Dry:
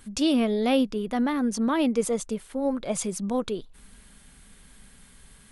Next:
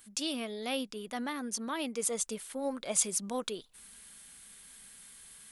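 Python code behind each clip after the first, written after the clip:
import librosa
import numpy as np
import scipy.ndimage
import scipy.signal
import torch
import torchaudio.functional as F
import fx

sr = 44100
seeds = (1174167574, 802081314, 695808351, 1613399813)

y = fx.rider(x, sr, range_db=10, speed_s=0.5)
y = fx.tilt_eq(y, sr, slope=3.0)
y = y * 10.0 ** (-7.5 / 20.0)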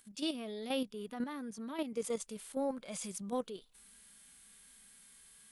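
y = fx.hpss(x, sr, part='percussive', gain_db=-14)
y = fx.level_steps(y, sr, step_db=9)
y = y * 10.0 ** (3.0 / 20.0)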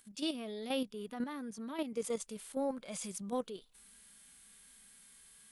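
y = x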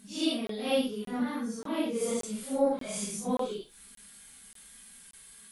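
y = fx.phase_scramble(x, sr, seeds[0], window_ms=200)
y = fx.buffer_crackle(y, sr, first_s=0.47, period_s=0.58, block=1024, kind='zero')
y = y * 10.0 ** (7.5 / 20.0)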